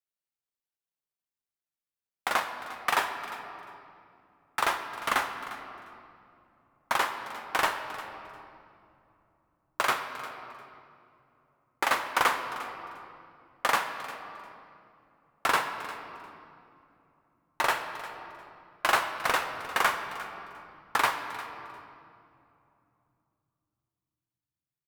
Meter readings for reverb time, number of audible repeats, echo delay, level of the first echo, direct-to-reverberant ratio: 2.7 s, 2, 0.352 s, -16.5 dB, 5.5 dB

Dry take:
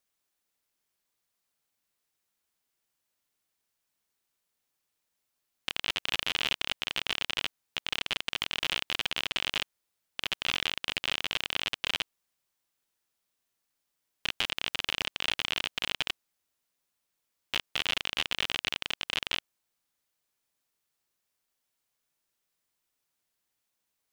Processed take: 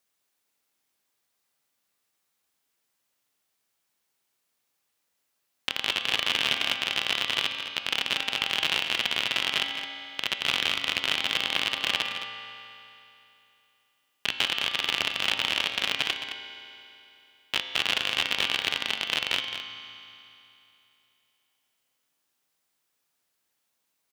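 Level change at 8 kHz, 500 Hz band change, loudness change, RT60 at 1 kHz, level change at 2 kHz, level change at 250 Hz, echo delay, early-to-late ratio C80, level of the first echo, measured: +4.5 dB, +5.0 dB, +5.0 dB, 2.9 s, +5.5 dB, +4.5 dB, 0.215 s, 5.0 dB, -10.0 dB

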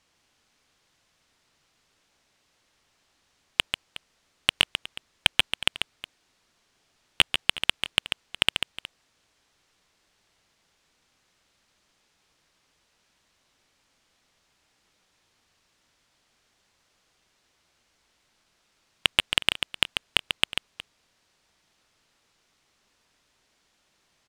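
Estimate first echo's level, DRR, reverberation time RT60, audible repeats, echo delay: -7.0 dB, none, none, 2, 0.141 s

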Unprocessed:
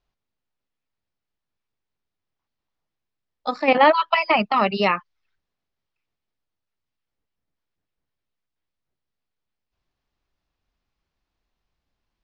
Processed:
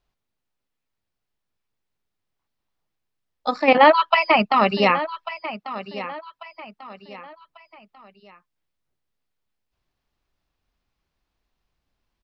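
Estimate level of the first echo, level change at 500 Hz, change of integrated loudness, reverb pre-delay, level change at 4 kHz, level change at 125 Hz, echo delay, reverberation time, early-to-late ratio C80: -14.0 dB, +2.0 dB, +0.5 dB, none, +2.0 dB, +2.0 dB, 1.143 s, none, none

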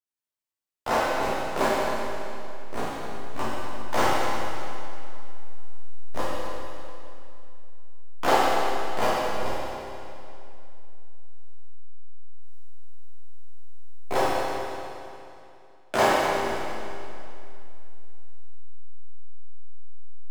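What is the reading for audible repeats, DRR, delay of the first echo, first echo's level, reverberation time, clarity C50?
none, -10.5 dB, none, none, 2.7 s, -4.0 dB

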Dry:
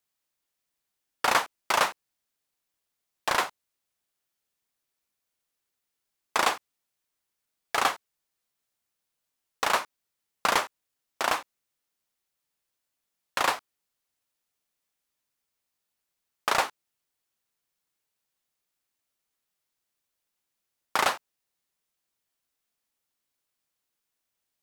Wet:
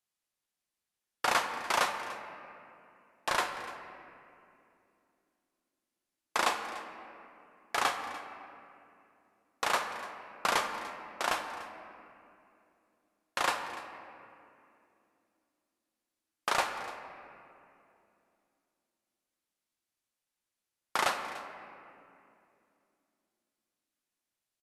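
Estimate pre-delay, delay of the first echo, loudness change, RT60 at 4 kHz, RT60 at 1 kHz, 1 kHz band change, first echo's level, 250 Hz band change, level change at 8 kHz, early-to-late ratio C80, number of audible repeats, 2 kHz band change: 6 ms, 0.293 s, -5.5 dB, 1.4 s, 2.4 s, -4.0 dB, -17.0 dB, -3.0 dB, -4.5 dB, 7.5 dB, 1, -4.0 dB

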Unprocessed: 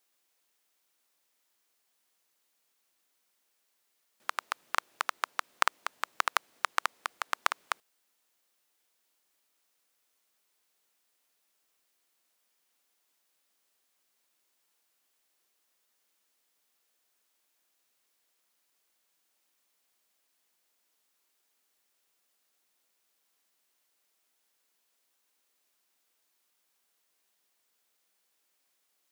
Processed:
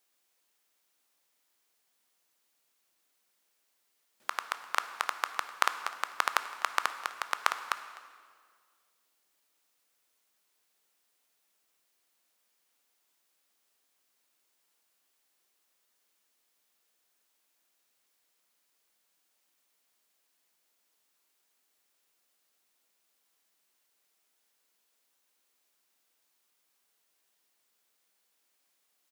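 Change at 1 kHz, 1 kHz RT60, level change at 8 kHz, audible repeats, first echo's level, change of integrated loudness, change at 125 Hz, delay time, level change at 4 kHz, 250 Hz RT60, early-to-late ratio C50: +0.5 dB, 1.8 s, +0.5 dB, 1, -20.0 dB, +0.5 dB, n/a, 0.253 s, +0.5 dB, 2.1 s, 11.0 dB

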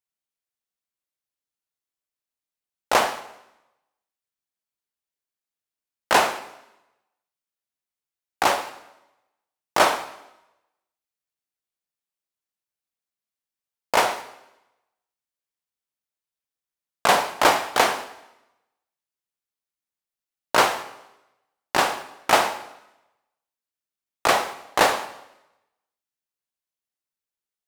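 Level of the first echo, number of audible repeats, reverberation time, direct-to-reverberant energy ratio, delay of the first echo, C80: none, none, 0.95 s, 10.0 dB, none, 15.0 dB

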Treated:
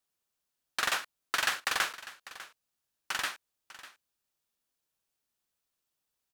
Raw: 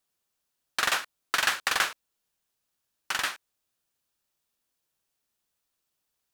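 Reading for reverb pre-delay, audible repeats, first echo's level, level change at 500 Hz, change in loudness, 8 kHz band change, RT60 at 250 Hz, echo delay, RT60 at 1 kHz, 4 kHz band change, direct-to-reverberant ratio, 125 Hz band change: none, 1, -16.5 dB, -4.0 dB, -4.0 dB, -4.0 dB, none, 0.598 s, none, -4.0 dB, none, -4.0 dB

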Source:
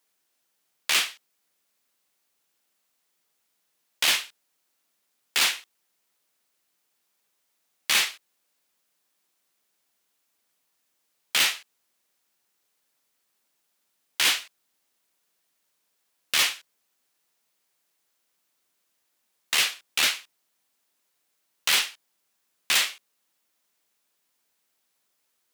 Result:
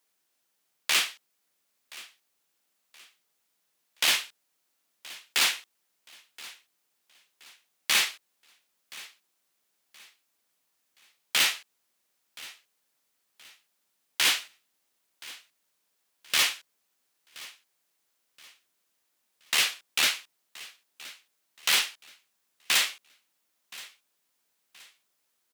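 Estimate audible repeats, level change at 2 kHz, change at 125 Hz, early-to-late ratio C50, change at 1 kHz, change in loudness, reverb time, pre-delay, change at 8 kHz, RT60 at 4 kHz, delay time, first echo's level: 2, -1.5 dB, n/a, none, -1.5 dB, -2.0 dB, none, none, -1.5 dB, none, 1.024 s, -20.0 dB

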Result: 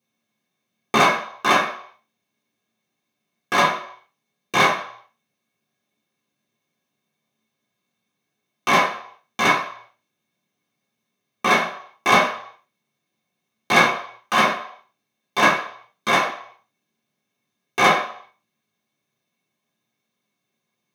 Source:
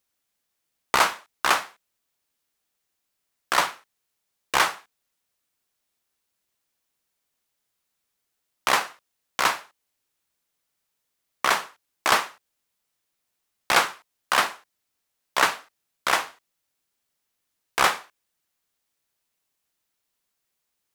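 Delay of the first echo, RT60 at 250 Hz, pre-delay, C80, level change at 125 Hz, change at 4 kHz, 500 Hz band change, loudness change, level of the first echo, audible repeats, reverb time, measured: none, 0.40 s, 3 ms, 10.0 dB, +13.5 dB, +2.5 dB, +8.0 dB, +4.0 dB, none, none, 0.60 s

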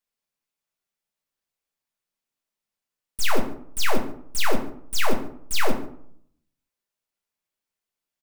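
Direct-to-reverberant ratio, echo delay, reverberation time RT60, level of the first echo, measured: 1.5 dB, 0.141 s, 0.65 s, -20.5 dB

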